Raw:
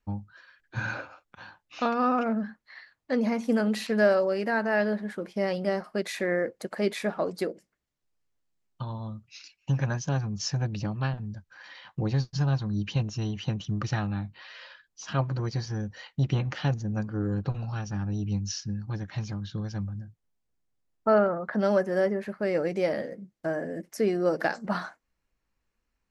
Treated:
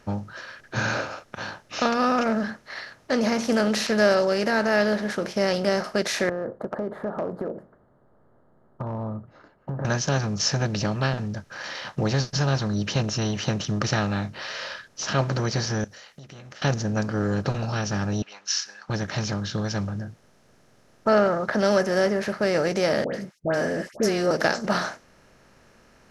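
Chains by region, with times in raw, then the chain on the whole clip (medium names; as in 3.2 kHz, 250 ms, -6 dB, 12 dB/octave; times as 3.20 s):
6.29–9.85 s: inverse Chebyshev low-pass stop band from 2.3 kHz + compression 4:1, threshold -35 dBFS
15.84–16.62 s: pre-emphasis filter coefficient 0.9 + compression, threshold -58 dBFS + band-stop 930 Hz, Q 10
18.22–18.90 s: high-pass 1.1 kHz 24 dB/octave + level-controlled noise filter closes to 2.5 kHz, open at -34.5 dBFS
23.04–24.31 s: gate -52 dBFS, range -51 dB + phase dispersion highs, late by 98 ms, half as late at 1.4 kHz
whole clip: spectral levelling over time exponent 0.6; dynamic bell 5.1 kHz, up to +7 dB, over -48 dBFS, Q 0.73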